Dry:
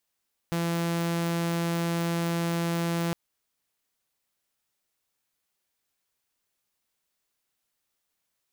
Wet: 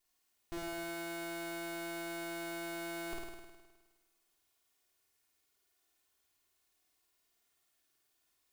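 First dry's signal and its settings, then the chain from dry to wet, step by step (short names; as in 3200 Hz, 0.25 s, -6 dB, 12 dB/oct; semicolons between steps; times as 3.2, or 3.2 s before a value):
tone saw 169 Hz -23 dBFS 2.61 s
minimum comb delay 2.8 ms; soft clip -38 dBFS; flutter echo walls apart 8.9 m, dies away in 1.3 s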